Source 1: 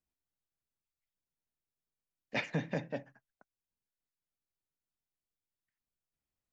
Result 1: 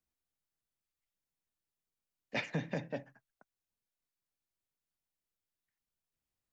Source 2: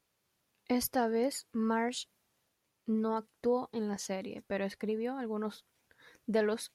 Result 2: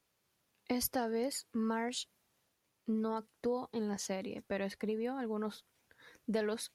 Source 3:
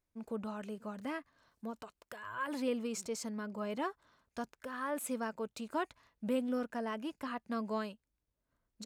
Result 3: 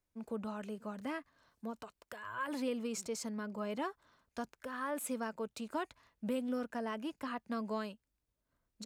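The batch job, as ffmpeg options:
-filter_complex "[0:a]acrossover=split=120|3000[a][b][c];[b]acompressor=threshold=-33dB:ratio=2.5[d];[a][d][c]amix=inputs=3:normalize=0"

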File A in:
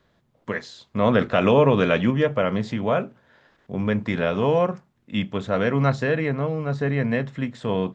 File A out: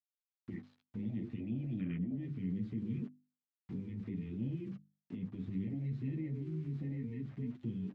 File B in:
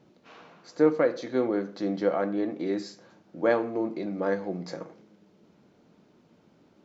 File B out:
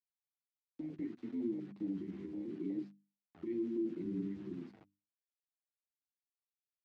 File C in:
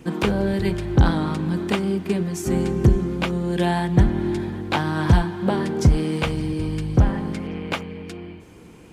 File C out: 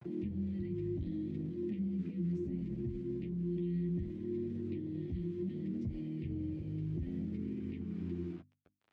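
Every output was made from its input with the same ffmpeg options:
-filter_complex "[0:a]afftfilt=real='re*(1-between(b*sr/4096,360,1800))':imag='im*(1-between(b*sr/4096,360,1800))':win_size=4096:overlap=0.75,afwtdn=0.0501,acrusher=bits=8:mix=0:aa=0.000001,adynamicequalizer=threshold=0.00158:dfrequency=900:dqfactor=3.3:tfrequency=900:tqfactor=3.3:attack=5:release=100:ratio=0.375:range=4:mode=cutabove:tftype=bell,highpass=58,acrossover=split=470|1300[a][b][c];[a]acompressor=threshold=-31dB:ratio=4[d];[b]acompressor=threshold=-50dB:ratio=4[e];[c]acompressor=threshold=-56dB:ratio=4[f];[d][e][f]amix=inputs=3:normalize=0,lowpass=2.5k,alimiter=level_in=5.5dB:limit=-24dB:level=0:latency=1:release=20,volume=-5.5dB,flanger=delay=8.4:depth=3.6:regen=-16:speed=0.65:shape=sinusoidal,bandreject=f=50:t=h:w=6,bandreject=f=100:t=h:w=6,bandreject=f=150:t=h:w=6,bandreject=f=200:t=h:w=6,bandreject=f=250:t=h:w=6,bandreject=f=300:t=h:w=6,volume=1.5dB"

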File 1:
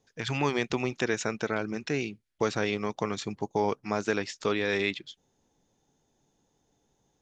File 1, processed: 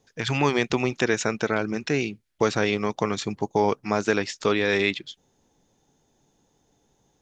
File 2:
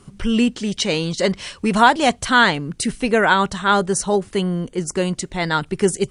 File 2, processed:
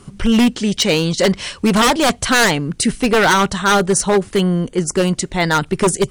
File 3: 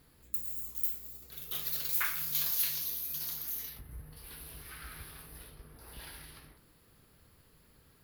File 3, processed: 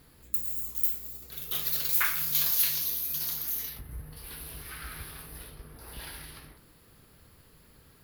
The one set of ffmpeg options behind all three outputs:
-af "aeval=exprs='0.237*(abs(mod(val(0)/0.237+3,4)-2)-1)':c=same,volume=5.5dB"

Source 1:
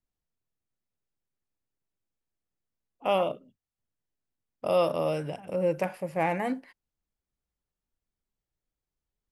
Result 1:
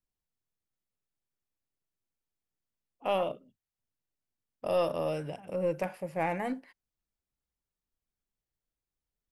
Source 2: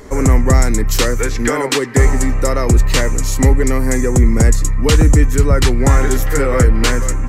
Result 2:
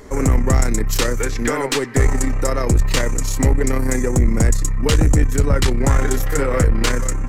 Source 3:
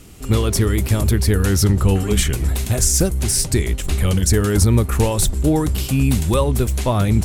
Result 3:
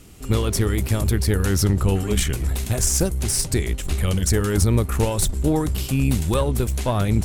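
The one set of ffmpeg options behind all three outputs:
-af "aeval=exprs='(tanh(1.78*val(0)+0.5)-tanh(0.5))/1.78':c=same,volume=-1.5dB"

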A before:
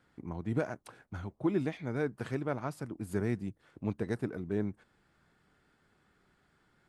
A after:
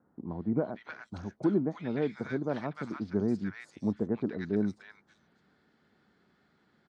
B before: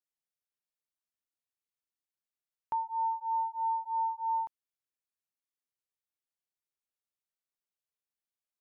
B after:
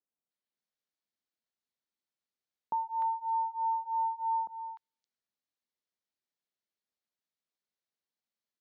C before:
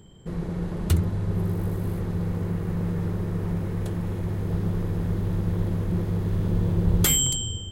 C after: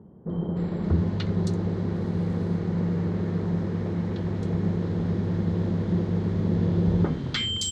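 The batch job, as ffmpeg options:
-filter_complex "[0:a]highpass=100,equalizer=f=120:t=q:w=4:g=-6,equalizer=f=220:t=q:w=4:g=5,equalizer=f=2.6k:t=q:w=4:g=-4,equalizer=f=4.2k:t=q:w=4:g=4,lowpass=f=6k:w=0.5412,lowpass=f=6k:w=1.3066,acrossover=split=1200|4700[a][b][c];[b]adelay=300[d];[c]adelay=570[e];[a][d][e]amix=inputs=3:normalize=0,volume=2.5dB"

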